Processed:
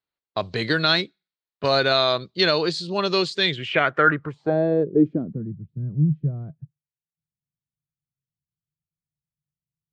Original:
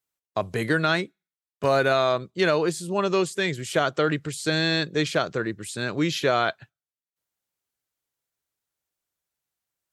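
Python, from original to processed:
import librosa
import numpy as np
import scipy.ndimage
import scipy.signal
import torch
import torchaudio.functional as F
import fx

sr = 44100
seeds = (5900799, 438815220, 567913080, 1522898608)

y = fx.env_lowpass(x, sr, base_hz=2100.0, full_db=-22.0)
y = fx.high_shelf(y, sr, hz=5500.0, db=8.0, at=(4.06, 4.74))
y = fx.filter_sweep_lowpass(y, sr, from_hz=4300.0, to_hz=150.0, start_s=3.39, end_s=5.55, q=5.1)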